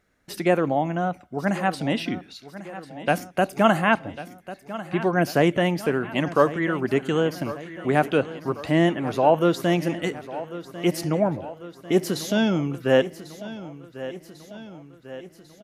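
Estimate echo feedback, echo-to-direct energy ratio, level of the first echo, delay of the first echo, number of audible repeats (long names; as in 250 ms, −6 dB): 58%, −13.0 dB, −15.0 dB, 1,096 ms, 5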